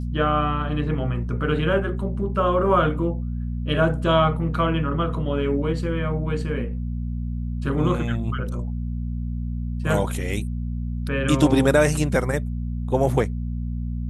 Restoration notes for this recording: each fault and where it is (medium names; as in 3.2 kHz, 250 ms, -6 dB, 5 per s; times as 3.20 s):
hum 60 Hz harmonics 4 -27 dBFS